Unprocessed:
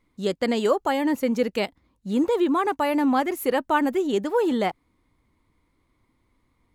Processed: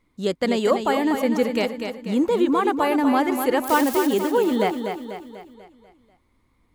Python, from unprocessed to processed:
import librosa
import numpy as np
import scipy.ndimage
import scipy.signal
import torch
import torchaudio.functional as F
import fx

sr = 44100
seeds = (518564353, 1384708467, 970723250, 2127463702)

y = fx.crossing_spikes(x, sr, level_db=-19.0, at=(3.64, 4.07))
y = fx.echo_feedback(y, sr, ms=245, feedback_pct=49, wet_db=-7)
y = F.gain(torch.from_numpy(y), 1.5).numpy()